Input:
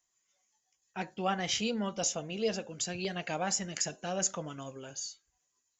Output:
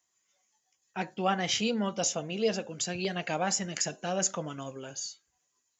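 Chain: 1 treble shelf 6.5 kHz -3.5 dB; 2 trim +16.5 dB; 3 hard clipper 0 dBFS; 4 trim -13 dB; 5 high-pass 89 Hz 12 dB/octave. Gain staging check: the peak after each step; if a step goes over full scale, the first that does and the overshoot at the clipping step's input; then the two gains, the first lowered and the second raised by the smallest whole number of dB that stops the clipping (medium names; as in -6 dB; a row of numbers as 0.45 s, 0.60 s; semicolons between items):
-18.5 dBFS, -2.0 dBFS, -2.0 dBFS, -15.0 dBFS, -14.0 dBFS; nothing clips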